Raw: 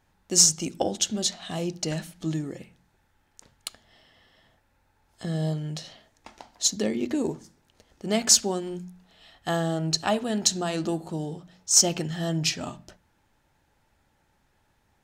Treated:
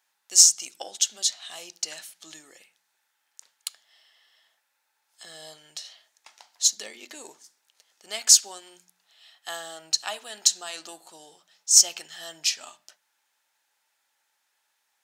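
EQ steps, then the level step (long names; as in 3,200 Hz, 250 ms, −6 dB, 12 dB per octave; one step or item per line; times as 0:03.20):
high-pass filter 820 Hz 12 dB per octave
high-shelf EQ 2,500 Hz +11.5 dB
−7.0 dB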